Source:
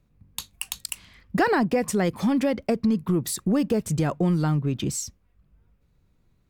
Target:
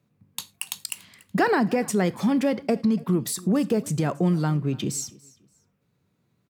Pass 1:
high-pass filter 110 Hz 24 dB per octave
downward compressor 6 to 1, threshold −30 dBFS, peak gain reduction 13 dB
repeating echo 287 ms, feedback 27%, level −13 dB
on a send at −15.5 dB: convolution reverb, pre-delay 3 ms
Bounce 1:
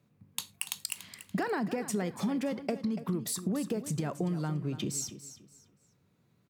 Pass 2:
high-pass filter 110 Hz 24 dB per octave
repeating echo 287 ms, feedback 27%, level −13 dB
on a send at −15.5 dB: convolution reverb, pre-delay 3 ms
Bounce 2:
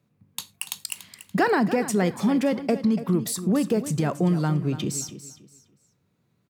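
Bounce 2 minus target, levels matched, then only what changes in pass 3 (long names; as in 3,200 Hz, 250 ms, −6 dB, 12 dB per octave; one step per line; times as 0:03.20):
echo-to-direct +4 dB
change: repeating echo 287 ms, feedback 27%, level −22.5 dB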